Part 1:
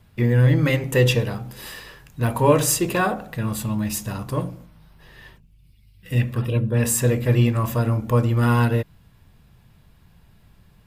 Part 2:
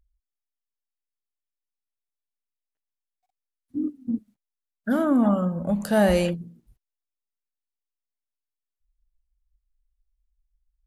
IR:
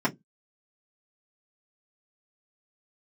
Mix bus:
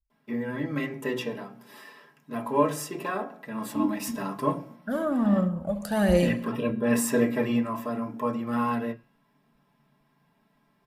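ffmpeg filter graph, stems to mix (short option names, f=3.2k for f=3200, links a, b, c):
-filter_complex "[0:a]bass=f=250:g=-12,treble=f=4k:g=-2,bandreject=f=181.6:t=h:w=4,bandreject=f=363.2:t=h:w=4,bandreject=f=544.8:t=h:w=4,bandreject=f=726.4:t=h:w=4,bandreject=f=908:t=h:w=4,bandreject=f=1.0896k:t=h:w=4,bandreject=f=1.2712k:t=h:w=4,bandreject=f=1.4528k:t=h:w=4,bandreject=f=1.6344k:t=h:w=4,bandreject=f=1.816k:t=h:w=4,bandreject=f=1.9976k:t=h:w=4,bandreject=f=2.1792k:t=h:w=4,bandreject=f=2.3608k:t=h:w=4,bandreject=f=2.5424k:t=h:w=4,bandreject=f=2.724k:t=h:w=4,bandreject=f=2.9056k:t=h:w=4,bandreject=f=3.0872k:t=h:w=4,bandreject=f=3.2688k:t=h:w=4,bandreject=f=3.4504k:t=h:w=4,bandreject=f=3.632k:t=h:w=4,bandreject=f=3.8136k:t=h:w=4,bandreject=f=3.9952k:t=h:w=4,bandreject=f=4.1768k:t=h:w=4,bandreject=f=4.3584k:t=h:w=4,bandreject=f=4.54k:t=h:w=4,bandreject=f=4.7216k:t=h:w=4,bandreject=f=4.9032k:t=h:w=4,bandreject=f=5.0848k:t=h:w=4,adelay=100,volume=-9.5dB,afade=t=in:st=3.45:d=0.37:silence=0.398107,afade=t=out:st=7.24:d=0.5:silence=0.473151,asplit=2[a][b];[b]volume=-3dB[c];[1:a]agate=range=-33dB:threshold=-58dB:ratio=3:detection=peak,aphaser=in_gain=1:out_gain=1:delay=2:decay=0.51:speed=1.3:type=triangular,volume=-5dB,asplit=2[d][e];[e]volume=-13.5dB[f];[2:a]atrim=start_sample=2205[g];[c][g]afir=irnorm=-1:irlink=0[h];[f]aecho=0:1:68|136|204|272|340|408|476:1|0.5|0.25|0.125|0.0625|0.0312|0.0156[i];[a][d][h][i]amix=inputs=4:normalize=0"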